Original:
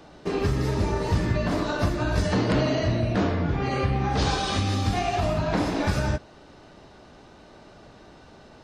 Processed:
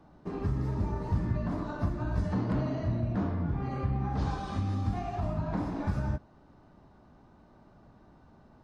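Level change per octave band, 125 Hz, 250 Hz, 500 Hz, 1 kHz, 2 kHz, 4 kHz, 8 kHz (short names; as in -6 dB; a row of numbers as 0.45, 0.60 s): -5.0 dB, -6.5 dB, -12.0 dB, -9.5 dB, -15.0 dB, -21.0 dB, under -20 dB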